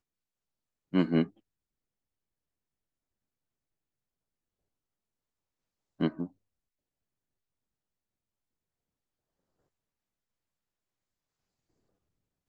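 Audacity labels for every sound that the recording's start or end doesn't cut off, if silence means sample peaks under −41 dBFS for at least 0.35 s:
0.930000	1.270000	sound
6.000000	6.260000	sound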